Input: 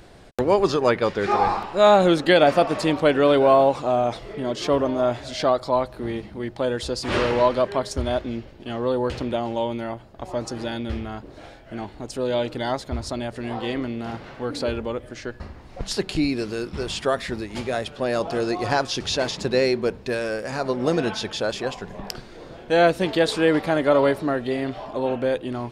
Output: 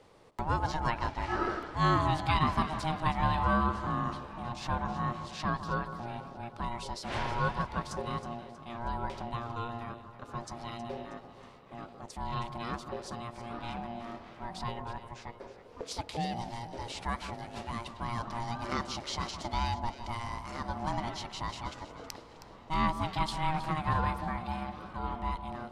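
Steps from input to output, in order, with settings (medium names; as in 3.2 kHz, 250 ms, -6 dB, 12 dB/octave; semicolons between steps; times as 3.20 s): echo whose repeats swap between lows and highs 159 ms, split 1 kHz, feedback 68%, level -10 dB; ring modulator 470 Hz; trim -9 dB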